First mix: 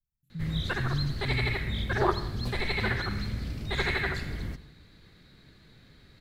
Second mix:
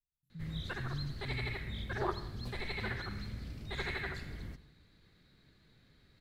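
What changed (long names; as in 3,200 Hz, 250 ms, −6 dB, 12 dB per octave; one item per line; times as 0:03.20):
speech −9.5 dB
background −9.5 dB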